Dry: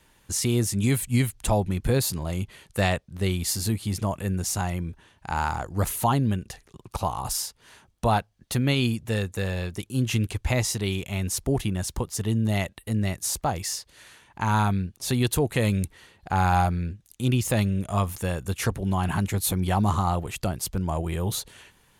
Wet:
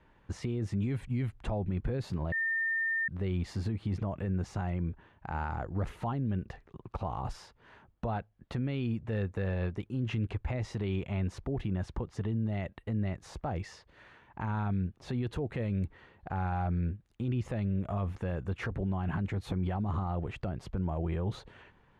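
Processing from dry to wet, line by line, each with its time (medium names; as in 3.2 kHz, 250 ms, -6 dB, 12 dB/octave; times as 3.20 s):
2.32–3.08 s: bleep 1.81 kHz -22.5 dBFS
whole clip: low-pass 1.7 kHz 12 dB/octave; dynamic bell 1 kHz, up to -6 dB, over -39 dBFS, Q 1.6; peak limiter -24 dBFS; trim -1 dB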